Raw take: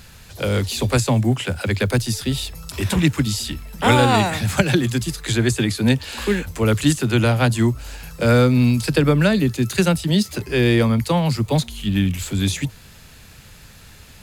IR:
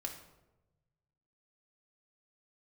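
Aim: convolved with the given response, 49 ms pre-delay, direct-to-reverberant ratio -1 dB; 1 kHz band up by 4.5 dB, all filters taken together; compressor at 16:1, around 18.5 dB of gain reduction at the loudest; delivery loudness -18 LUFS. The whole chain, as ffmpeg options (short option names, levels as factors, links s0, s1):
-filter_complex "[0:a]equalizer=f=1000:t=o:g=6,acompressor=threshold=0.0398:ratio=16,asplit=2[s0][s1];[1:a]atrim=start_sample=2205,adelay=49[s2];[s1][s2]afir=irnorm=-1:irlink=0,volume=1.26[s3];[s0][s3]amix=inputs=2:normalize=0,volume=3.76"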